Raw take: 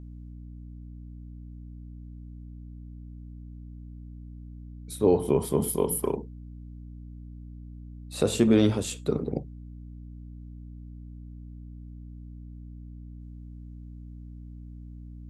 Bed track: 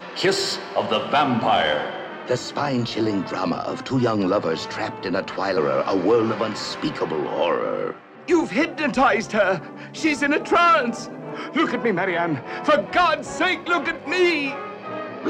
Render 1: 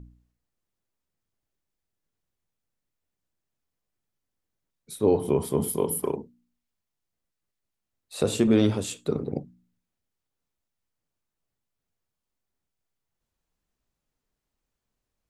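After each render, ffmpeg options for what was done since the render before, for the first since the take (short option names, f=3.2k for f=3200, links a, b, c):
-af "bandreject=f=60:t=h:w=4,bandreject=f=120:t=h:w=4,bandreject=f=180:t=h:w=4,bandreject=f=240:t=h:w=4,bandreject=f=300:t=h:w=4"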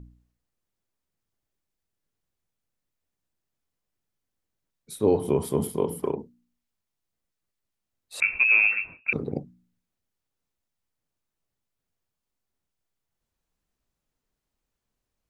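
-filter_complex "[0:a]asettb=1/sr,asplit=3[a][b][c];[a]atrim=end=5.674[d];[b]atrim=start=5.67:end=6.19,asetpts=PTS-STARTPTS,afade=t=in:d=0.004:c=qsin,afade=t=out:st=0.516:d=0.004:c=qsin,aemphasis=mode=reproduction:type=50fm[e];[c]atrim=start=6.186[f];[d][e]acrossfade=d=0.004:c1=hsin:c2=qsin[g];[g][f]acrossfade=d=0.004:c1=qsin:c2=hsin,asettb=1/sr,asplit=3[h][i][j];[h]atrim=end=8.204[k];[i]atrim=start=8.2:end=9.13,asetpts=PTS-STARTPTS,afade=t=in:d=0.004:c=qsin,afade=t=out:st=0.926:d=0.004:c=qsin,lowpass=f=2.4k:t=q:w=0.5098,lowpass=f=2.4k:t=q:w=0.6013,lowpass=f=2.4k:t=q:w=0.9,lowpass=f=2.4k:t=q:w=2.563,afreqshift=-2800[l];[j]atrim=start=9.126[m];[k][l]acrossfade=d=0.004:c1=hsin:c2=qsin[n];[n][m]acrossfade=d=0.004:c1=qsin:c2=hsin"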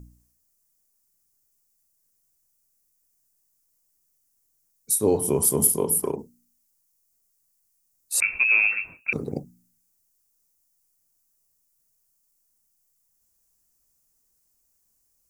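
-af "aexciter=amount=7.6:drive=5.3:freq=5.2k"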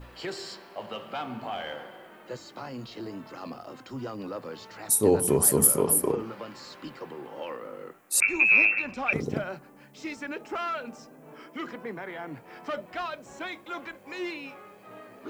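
-filter_complex "[1:a]volume=-16dB[a];[0:a][a]amix=inputs=2:normalize=0"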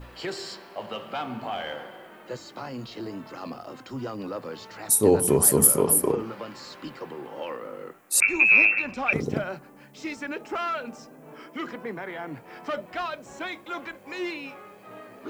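-af "volume=2.5dB"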